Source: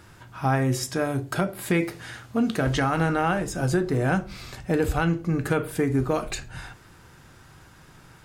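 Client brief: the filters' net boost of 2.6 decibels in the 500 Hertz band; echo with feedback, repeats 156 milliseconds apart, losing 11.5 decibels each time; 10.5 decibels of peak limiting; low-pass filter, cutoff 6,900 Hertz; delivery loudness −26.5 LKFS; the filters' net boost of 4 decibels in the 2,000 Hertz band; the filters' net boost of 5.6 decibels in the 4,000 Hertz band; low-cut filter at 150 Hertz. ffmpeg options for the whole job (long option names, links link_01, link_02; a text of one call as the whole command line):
ffmpeg -i in.wav -af "highpass=150,lowpass=6900,equalizer=frequency=500:width_type=o:gain=3,equalizer=frequency=2000:width_type=o:gain=4,equalizer=frequency=4000:width_type=o:gain=6.5,alimiter=limit=-17dB:level=0:latency=1,aecho=1:1:156|312|468:0.266|0.0718|0.0194,volume=2dB" out.wav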